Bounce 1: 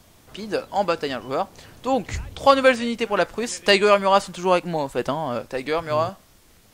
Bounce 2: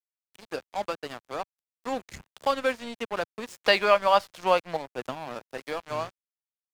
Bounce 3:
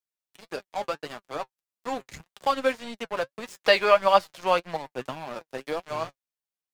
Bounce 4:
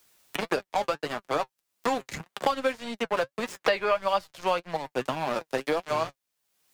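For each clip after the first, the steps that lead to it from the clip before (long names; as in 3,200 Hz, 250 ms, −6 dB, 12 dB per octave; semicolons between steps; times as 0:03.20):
gain on a spectral selection 0:03.62–0:04.77, 440–5,900 Hz +9 dB; dead-zone distortion −28 dBFS; multiband upward and downward compressor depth 40%; level −9 dB
flanger 1.7 Hz, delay 4.7 ms, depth 3.1 ms, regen +48%; level +4.5 dB
multiband upward and downward compressor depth 100%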